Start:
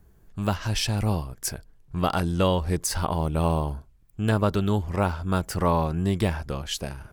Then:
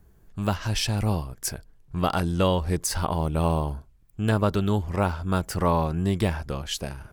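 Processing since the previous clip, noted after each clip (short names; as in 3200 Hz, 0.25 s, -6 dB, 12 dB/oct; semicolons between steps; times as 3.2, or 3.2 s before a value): nothing audible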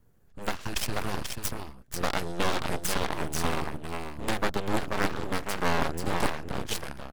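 echo 0.486 s -4.5 dB; added harmonics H 3 -20 dB, 6 -13 dB, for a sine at -8.5 dBFS; full-wave rectifier; gain -2 dB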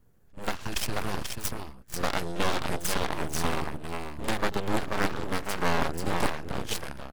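pre-echo 41 ms -16.5 dB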